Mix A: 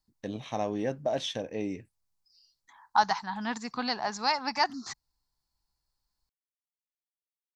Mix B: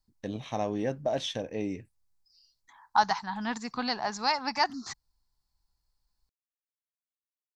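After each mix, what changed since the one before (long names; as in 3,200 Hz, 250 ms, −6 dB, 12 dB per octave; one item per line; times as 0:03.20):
master: add low-shelf EQ 73 Hz +8 dB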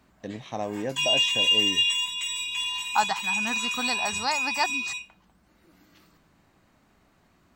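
background: unmuted
master: add low-shelf EQ 73 Hz −8 dB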